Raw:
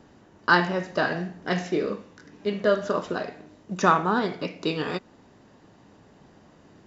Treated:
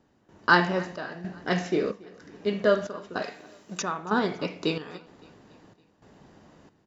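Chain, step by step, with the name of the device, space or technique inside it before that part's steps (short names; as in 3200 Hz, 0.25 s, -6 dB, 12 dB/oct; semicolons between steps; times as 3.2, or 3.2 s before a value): 3.22–3.81 tilt +3 dB/oct; trance gate with a delay (step gate "...xxxxxxx" 157 bpm -12 dB; feedback echo 0.281 s, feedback 55%, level -23 dB)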